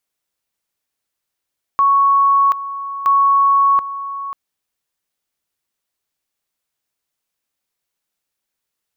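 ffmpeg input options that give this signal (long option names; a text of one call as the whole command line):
ffmpeg -f lavfi -i "aevalsrc='pow(10,(-9.5-13.5*gte(mod(t,1.27),0.73))/20)*sin(2*PI*1110*t)':duration=2.54:sample_rate=44100" out.wav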